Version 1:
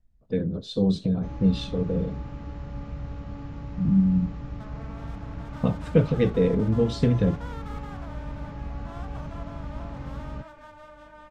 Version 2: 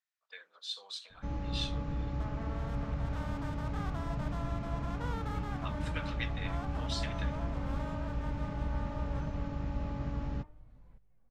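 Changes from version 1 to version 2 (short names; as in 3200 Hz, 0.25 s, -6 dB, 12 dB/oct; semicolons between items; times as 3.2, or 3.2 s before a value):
speech: add HPF 1200 Hz 24 dB/oct; second sound: entry -2.40 s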